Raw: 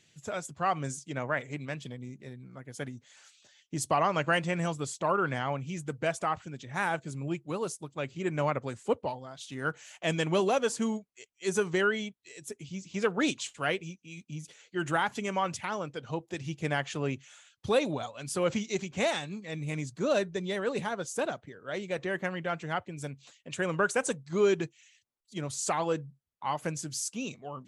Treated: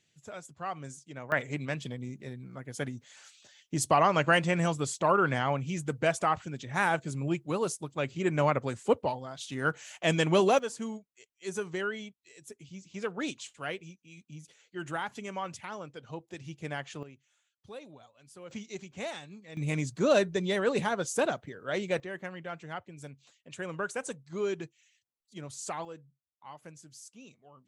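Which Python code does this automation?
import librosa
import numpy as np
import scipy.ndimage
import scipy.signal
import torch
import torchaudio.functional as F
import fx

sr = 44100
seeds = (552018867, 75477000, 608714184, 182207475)

y = fx.gain(x, sr, db=fx.steps((0.0, -8.0), (1.32, 3.0), (10.59, -6.5), (17.03, -19.0), (18.51, -9.0), (19.57, 3.5), (22.0, -7.0), (25.85, -15.5)))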